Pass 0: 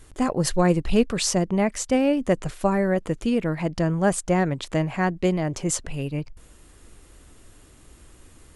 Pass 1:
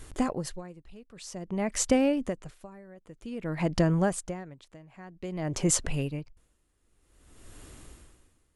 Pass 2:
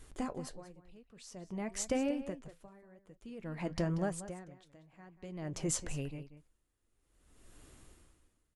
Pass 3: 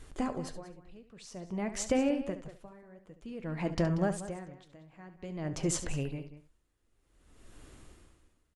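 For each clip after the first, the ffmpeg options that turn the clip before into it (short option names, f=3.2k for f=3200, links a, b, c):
-af "acompressor=threshold=-22dB:ratio=6,aeval=exprs='val(0)*pow(10,-26*(0.5-0.5*cos(2*PI*0.52*n/s))/20)':c=same,volume=3dB"
-filter_complex "[0:a]asplit=2[a][b];[b]adelay=186.6,volume=-13dB,highshelf=f=4k:g=-4.2[c];[a][c]amix=inputs=2:normalize=0,flanger=delay=3.9:depth=5.6:regen=-69:speed=0.95:shape=triangular,volume=-5dB"
-af "highshelf=f=9.9k:g=-11.5,aecho=1:1:70:0.237,volume=4.5dB"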